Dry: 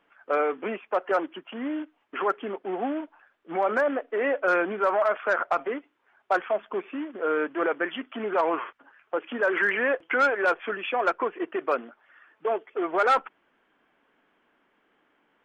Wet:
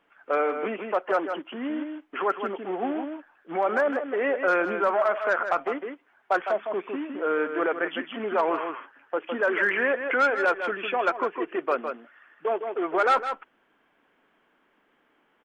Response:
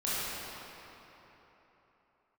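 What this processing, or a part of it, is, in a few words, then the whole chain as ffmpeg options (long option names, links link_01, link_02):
ducked delay: -filter_complex "[0:a]asplit=3[link_01][link_02][link_03];[link_02]adelay=158,volume=-5dB[link_04];[link_03]apad=whole_len=687923[link_05];[link_04][link_05]sidechaincompress=threshold=-29dB:ratio=8:attack=37:release=250[link_06];[link_01][link_06]amix=inputs=2:normalize=0"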